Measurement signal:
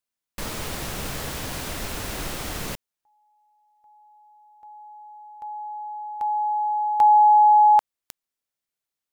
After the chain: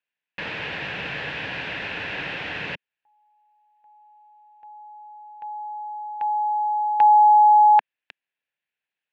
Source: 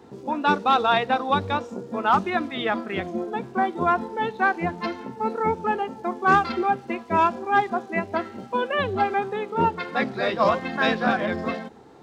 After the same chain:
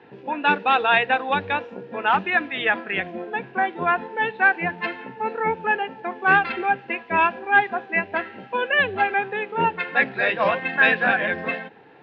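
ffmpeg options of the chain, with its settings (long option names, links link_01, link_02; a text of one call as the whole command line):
ffmpeg -i in.wav -af "highpass=160,equalizer=frequency=230:width_type=q:width=4:gain=-9,equalizer=frequency=360:width_type=q:width=4:gain=-6,equalizer=frequency=640:width_type=q:width=4:gain=-3,equalizer=frequency=1200:width_type=q:width=4:gain=-8,equalizer=frequency=1700:width_type=q:width=4:gain=9,equalizer=frequency=2600:width_type=q:width=4:gain=9,lowpass=frequency=3400:width=0.5412,lowpass=frequency=3400:width=1.3066,volume=2dB" out.wav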